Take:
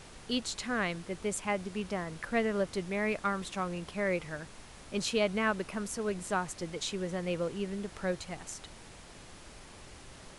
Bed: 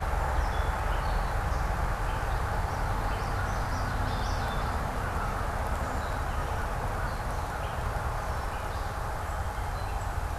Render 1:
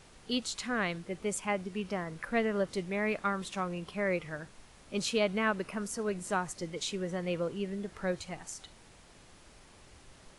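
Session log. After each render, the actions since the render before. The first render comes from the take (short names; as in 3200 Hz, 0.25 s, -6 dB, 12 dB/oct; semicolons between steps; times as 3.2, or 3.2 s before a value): noise print and reduce 6 dB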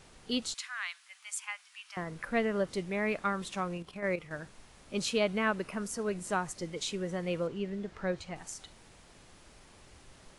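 0.54–1.97 Bessel high-pass 1700 Hz, order 8; 3.77–4.31 level quantiser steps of 10 dB; 7.47–8.36 air absorption 69 m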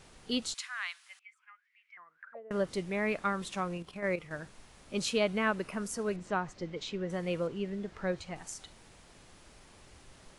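1.19–2.51 auto-wah 540–2700 Hz, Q 17, down, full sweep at -28 dBFS; 6.16–7.1 air absorption 150 m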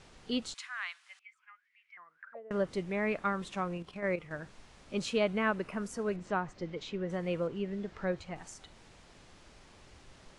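LPF 7000 Hz 12 dB/oct; dynamic EQ 4900 Hz, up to -5 dB, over -54 dBFS, Q 0.83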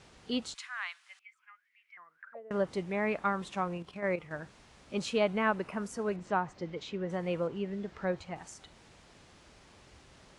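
HPF 44 Hz; dynamic EQ 860 Hz, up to +5 dB, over -49 dBFS, Q 2.2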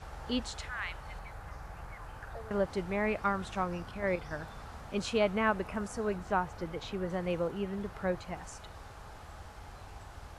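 add bed -16 dB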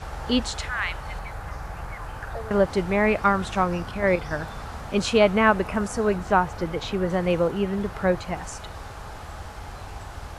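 gain +10.5 dB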